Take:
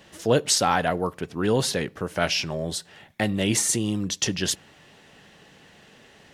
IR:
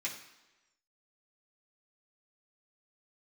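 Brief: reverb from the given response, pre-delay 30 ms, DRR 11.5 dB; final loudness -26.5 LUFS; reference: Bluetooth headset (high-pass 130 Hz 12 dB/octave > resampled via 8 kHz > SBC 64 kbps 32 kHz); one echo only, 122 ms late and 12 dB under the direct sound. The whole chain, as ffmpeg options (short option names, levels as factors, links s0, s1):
-filter_complex "[0:a]aecho=1:1:122:0.251,asplit=2[s0][s1];[1:a]atrim=start_sample=2205,adelay=30[s2];[s1][s2]afir=irnorm=-1:irlink=0,volume=0.2[s3];[s0][s3]amix=inputs=2:normalize=0,highpass=130,aresample=8000,aresample=44100,volume=0.944" -ar 32000 -c:a sbc -b:a 64k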